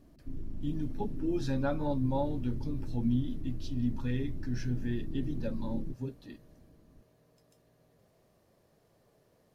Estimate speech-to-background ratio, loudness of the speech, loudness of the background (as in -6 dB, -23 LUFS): 8.0 dB, -35.0 LUFS, -43.0 LUFS